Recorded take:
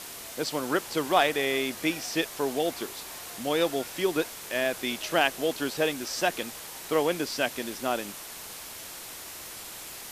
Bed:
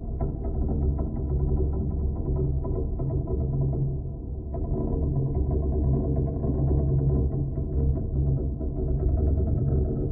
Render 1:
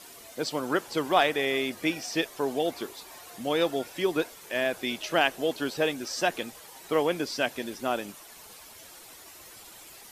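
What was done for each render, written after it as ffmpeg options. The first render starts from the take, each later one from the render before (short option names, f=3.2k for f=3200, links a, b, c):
-af "afftdn=nr=10:nf=-42"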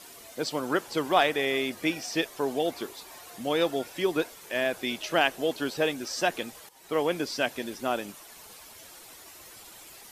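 -filter_complex "[0:a]asplit=2[a][b];[a]atrim=end=6.69,asetpts=PTS-STARTPTS,afade=t=out:st=6.686:d=0.004:c=hsin:silence=0.188365[c];[b]atrim=start=6.69,asetpts=PTS-STARTPTS,afade=t=in:d=0.52:c=qsin:silence=0.188365[d];[c][d]concat=n=2:v=0:a=1"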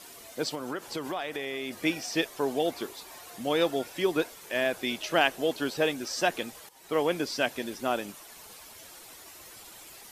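-filter_complex "[0:a]asettb=1/sr,asplit=3[a][b][c];[a]atrim=end=0.544[d];[b]atrim=start=0.54:end=1.83,asetpts=PTS-STARTPTS,afade=t=in:d=0.004:c=qsin,afade=t=out:st=1.286:d=0.004:c=qsin,acompressor=threshold=-30dB:ratio=5:attack=3.2:release=140:knee=1:detection=peak[e];[c]atrim=start=1.826[f];[d][e]acrossfade=d=0.004:c1=hsin:c2=qsin[g];[g][f]acrossfade=d=0.004:c1=qsin:c2=hsin"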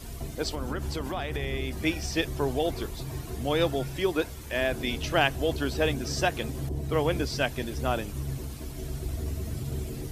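-filter_complex "[1:a]volume=-9dB[a];[0:a][a]amix=inputs=2:normalize=0"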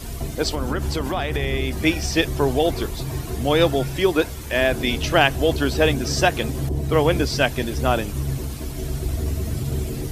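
-af "volume=8dB,alimiter=limit=-2dB:level=0:latency=1"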